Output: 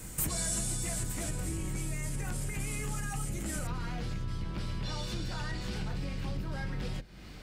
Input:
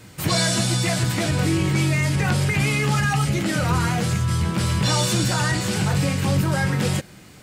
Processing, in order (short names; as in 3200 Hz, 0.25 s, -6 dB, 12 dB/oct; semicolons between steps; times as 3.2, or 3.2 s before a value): octaver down 2 oct, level +3 dB; compressor 5:1, threshold -31 dBFS, peak gain reduction 17 dB; resonant high shelf 6000 Hz +10 dB, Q 1.5, from 3.67 s -6.5 dB; gain -3.5 dB